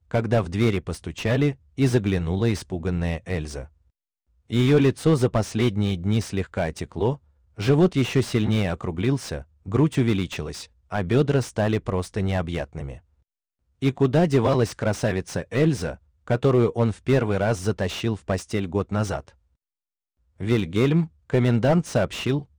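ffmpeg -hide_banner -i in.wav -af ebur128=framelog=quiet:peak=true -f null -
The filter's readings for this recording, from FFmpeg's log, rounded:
Integrated loudness:
  I:         -23.5 LUFS
  Threshold: -34.0 LUFS
Loudness range:
  LRA:         3.2 LU
  Threshold: -44.4 LUFS
  LRA low:   -26.3 LUFS
  LRA high:  -23.1 LUFS
True peak:
  Peak:       -7.3 dBFS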